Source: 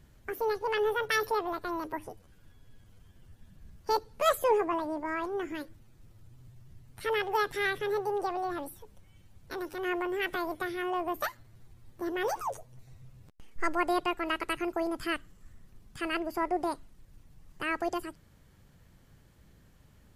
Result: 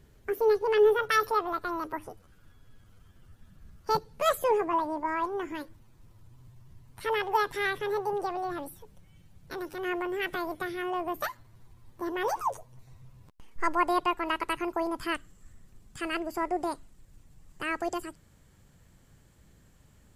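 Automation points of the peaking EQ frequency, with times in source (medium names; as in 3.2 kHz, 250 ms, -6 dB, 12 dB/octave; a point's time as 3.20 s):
peaking EQ +8.5 dB 0.33 oct
420 Hz
from 0.99 s 1.3 kHz
from 3.95 s 160 Hz
from 4.73 s 1 kHz
from 8.13 s 160 Hz
from 11.29 s 1 kHz
from 15.15 s 7.6 kHz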